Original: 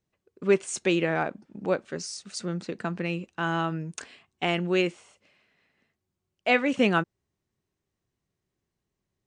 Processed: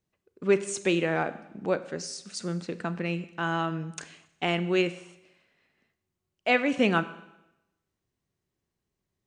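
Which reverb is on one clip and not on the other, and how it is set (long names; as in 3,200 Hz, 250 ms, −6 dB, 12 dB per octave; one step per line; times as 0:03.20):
four-comb reverb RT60 0.9 s, combs from 31 ms, DRR 13.5 dB
level −1 dB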